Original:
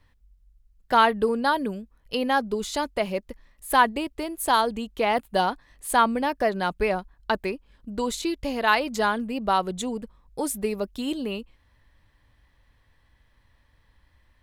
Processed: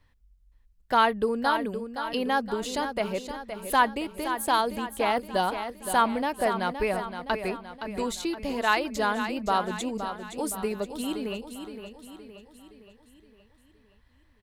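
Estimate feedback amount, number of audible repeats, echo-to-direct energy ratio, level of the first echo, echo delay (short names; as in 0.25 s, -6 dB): 51%, 5, -7.5 dB, -9.0 dB, 0.518 s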